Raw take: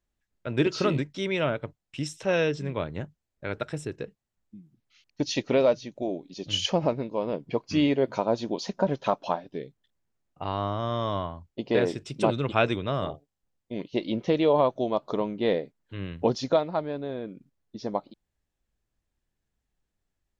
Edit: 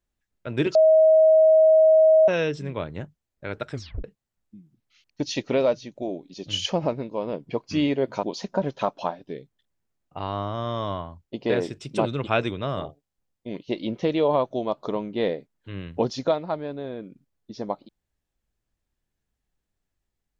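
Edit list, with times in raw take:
0.75–2.28 bleep 634 Hz -12 dBFS
3.71 tape stop 0.33 s
8.23–8.48 cut

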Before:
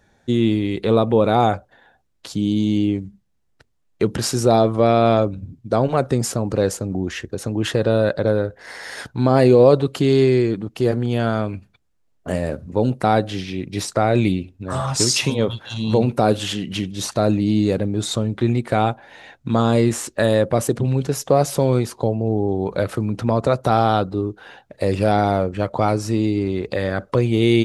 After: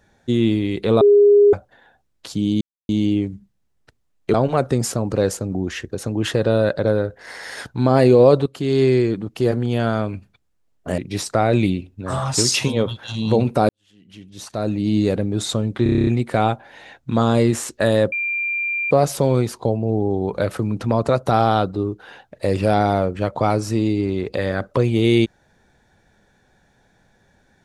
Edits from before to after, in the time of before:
1.01–1.53 bleep 409 Hz -8 dBFS
2.61 insert silence 0.28 s
4.06–5.74 cut
9.86–10.28 fade in, from -14 dB
12.38–13.6 cut
16.31–17.61 fade in quadratic
18.45 stutter 0.03 s, 9 plays
20.5–21.29 bleep 2380 Hz -20 dBFS

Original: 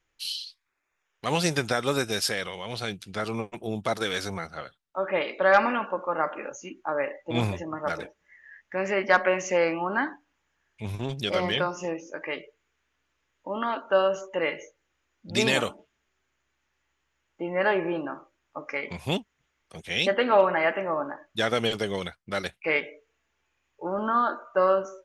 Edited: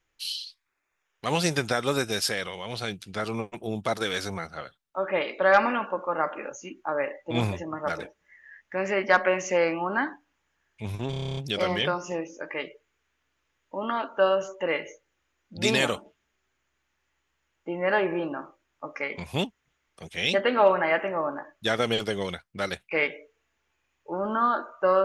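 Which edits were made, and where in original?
11.1 stutter 0.03 s, 10 plays

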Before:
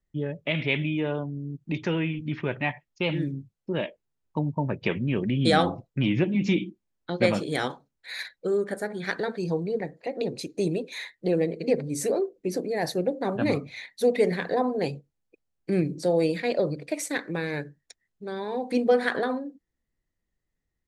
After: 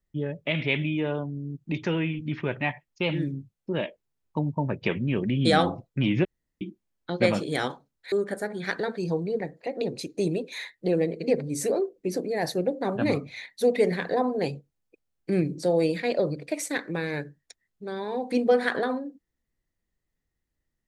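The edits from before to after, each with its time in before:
6.25–6.61 room tone
8.12–8.52 cut

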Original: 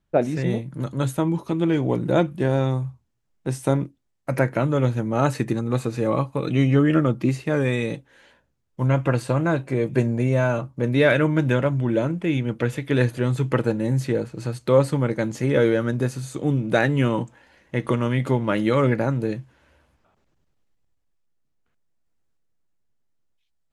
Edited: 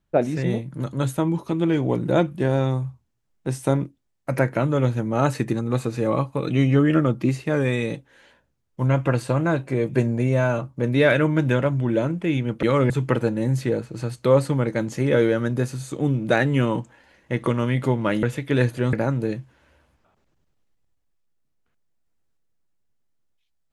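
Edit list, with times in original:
12.63–13.33 swap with 18.66–18.93

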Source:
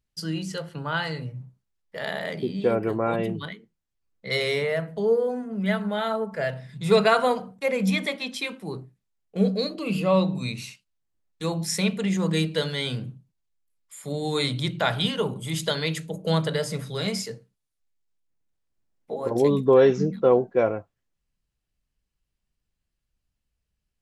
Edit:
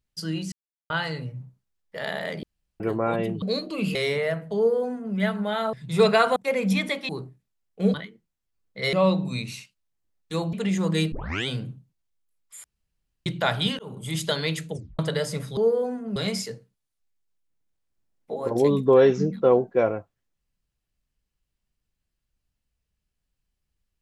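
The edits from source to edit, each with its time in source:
0.52–0.9 mute
2.43–2.8 room tone
3.42–4.41 swap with 9.5–10.03
5.02–5.61 copy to 16.96
6.19–6.65 cut
7.28–7.53 cut
8.26–8.65 cut
11.63–11.92 cut
12.51 tape start 0.35 s
14.03–14.65 room tone
15.18–15.46 fade in
16.11 tape stop 0.27 s

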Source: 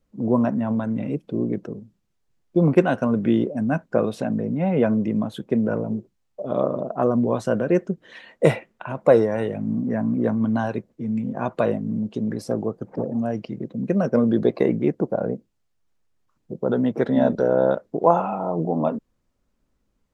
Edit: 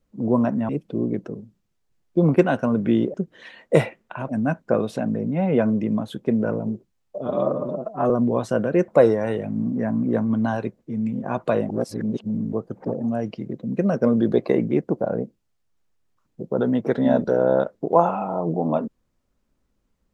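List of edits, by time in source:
0.69–1.08 cut
6.5–7.06 stretch 1.5×
7.84–8.99 move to 3.53
11.8–12.64 reverse

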